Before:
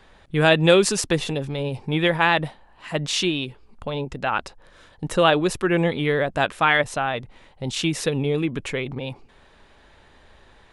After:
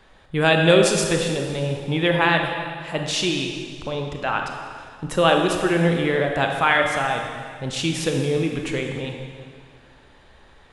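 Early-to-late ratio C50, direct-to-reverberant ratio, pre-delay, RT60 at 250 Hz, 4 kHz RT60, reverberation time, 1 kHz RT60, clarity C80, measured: 3.5 dB, 2.5 dB, 26 ms, 2.1 s, 1.8 s, 2.0 s, 2.0 s, 5.0 dB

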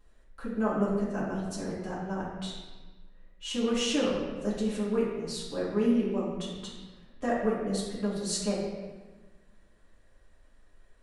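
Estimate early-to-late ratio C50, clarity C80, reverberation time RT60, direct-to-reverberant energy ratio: 1.0 dB, 3.0 dB, 1.3 s, −9.0 dB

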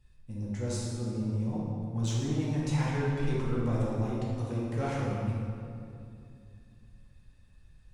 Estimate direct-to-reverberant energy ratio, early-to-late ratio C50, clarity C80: −7.0 dB, −2.5 dB, 0.0 dB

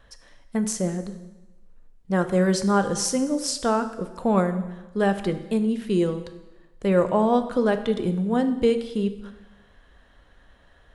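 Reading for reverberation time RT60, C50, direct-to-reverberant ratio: 1.1 s, 11.5 dB, 8.5 dB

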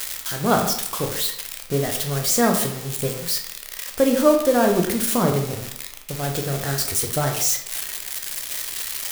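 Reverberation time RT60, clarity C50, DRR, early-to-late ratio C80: 0.75 s, 6.5 dB, 2.0 dB, 9.0 dB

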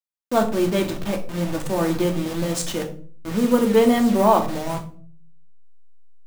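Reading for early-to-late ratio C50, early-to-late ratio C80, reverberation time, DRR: 11.5 dB, 16.0 dB, 0.45 s, 3.0 dB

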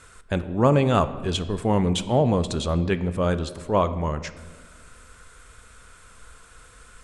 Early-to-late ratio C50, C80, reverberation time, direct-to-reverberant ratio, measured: 14.0 dB, 15.5 dB, 1.5 s, 11.5 dB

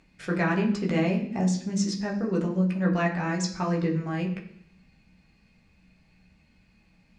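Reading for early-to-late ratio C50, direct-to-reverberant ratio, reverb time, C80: 9.0 dB, −1.5 dB, 0.65 s, 12.0 dB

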